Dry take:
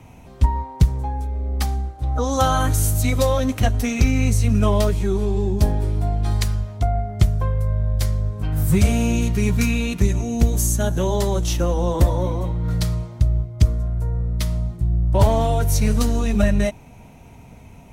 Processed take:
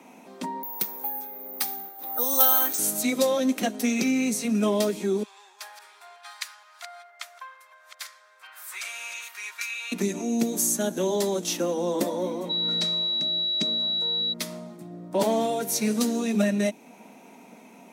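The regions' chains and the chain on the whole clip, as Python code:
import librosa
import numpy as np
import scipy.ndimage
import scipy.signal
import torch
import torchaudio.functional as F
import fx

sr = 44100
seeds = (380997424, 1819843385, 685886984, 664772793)

y = fx.chain(x, sr, fx.highpass(hz=900.0, slope=6),
    fx.resample_bad(factor=3, down='filtered', up='zero_stuff'), at=(0.63, 2.79))
y = fx.chain(y, sr, fx.reverse_delay(ms=468, wet_db=-10),
    fx.highpass(hz=1200.0, slope=24),
    fx.high_shelf(hz=3800.0, db=-9.0), at=(5.23, 9.92))
y = fx.lowpass(y, sr, hz=6400.0, slope=12, at=(12.49, 14.32), fade=0.02)
y = fx.dmg_tone(y, sr, hz=3900.0, level_db=-23.0, at=(12.49, 14.32), fade=0.02)
y = scipy.signal.sosfilt(scipy.signal.butter(8, 200.0, 'highpass', fs=sr, output='sos'), y)
y = fx.notch(y, sr, hz=3000.0, q=20.0)
y = fx.dynamic_eq(y, sr, hz=1100.0, q=0.85, threshold_db=-38.0, ratio=4.0, max_db=-7)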